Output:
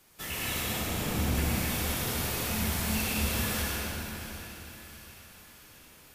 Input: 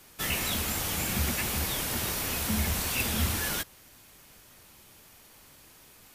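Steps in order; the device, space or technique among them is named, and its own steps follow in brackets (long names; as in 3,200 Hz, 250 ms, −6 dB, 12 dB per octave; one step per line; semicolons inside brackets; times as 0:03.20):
0:00.63–0:01.35: tilt shelving filter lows +4.5 dB
tunnel (flutter between parallel walls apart 11.1 metres, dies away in 0.51 s; convolution reverb RT60 3.6 s, pre-delay 94 ms, DRR −5 dB)
echo with a time of its own for lows and highs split 1,100 Hz, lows 235 ms, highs 670 ms, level −13 dB
level −7.5 dB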